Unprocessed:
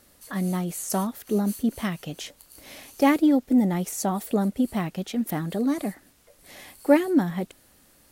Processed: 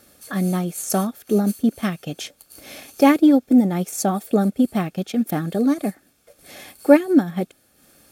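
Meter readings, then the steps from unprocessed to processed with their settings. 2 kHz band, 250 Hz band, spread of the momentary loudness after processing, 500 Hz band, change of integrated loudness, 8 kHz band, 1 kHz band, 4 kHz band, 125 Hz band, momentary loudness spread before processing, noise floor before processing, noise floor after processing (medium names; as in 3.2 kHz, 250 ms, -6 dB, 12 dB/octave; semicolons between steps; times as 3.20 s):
+3.5 dB, +5.0 dB, 17 LU, +5.5 dB, +5.0 dB, +4.0 dB, +4.0 dB, +3.5 dB, +4.0 dB, 17 LU, -58 dBFS, -60 dBFS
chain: transient shaper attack 0 dB, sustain -7 dB; comb of notches 970 Hz; trim +6 dB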